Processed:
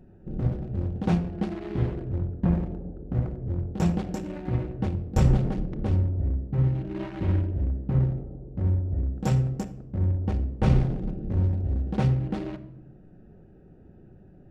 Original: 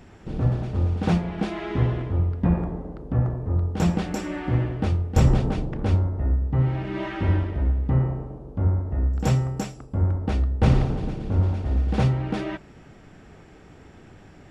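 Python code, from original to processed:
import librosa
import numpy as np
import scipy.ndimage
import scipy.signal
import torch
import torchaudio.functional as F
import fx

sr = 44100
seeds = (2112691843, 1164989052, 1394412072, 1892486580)

y = fx.wiener(x, sr, points=41)
y = fx.room_shoebox(y, sr, seeds[0], volume_m3=2600.0, walls='furnished', distance_m=1.0)
y = y * librosa.db_to_amplitude(-3.0)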